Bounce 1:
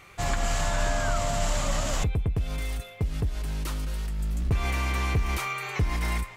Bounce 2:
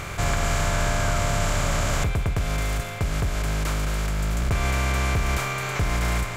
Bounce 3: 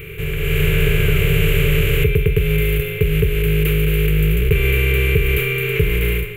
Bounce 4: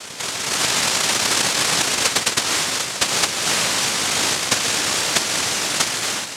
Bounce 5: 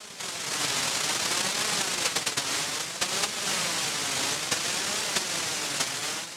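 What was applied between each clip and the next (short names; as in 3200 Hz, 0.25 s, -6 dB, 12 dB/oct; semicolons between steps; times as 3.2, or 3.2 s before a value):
per-bin compression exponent 0.4; gain -1.5 dB
EQ curve 120 Hz 0 dB, 160 Hz +7 dB, 230 Hz -20 dB, 430 Hz +14 dB, 660 Hz -24 dB, 1100 Hz -18 dB, 2700 Hz +8 dB, 5300 Hz -25 dB, 8100 Hz -13 dB, 13000 Hz +11 dB; AGC gain up to 11.5 dB; gain -1.5 dB
hum 60 Hz, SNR 19 dB; noise vocoder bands 1; gain -1.5 dB
flange 0.6 Hz, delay 4.6 ms, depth 2.9 ms, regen +49%; gain -4.5 dB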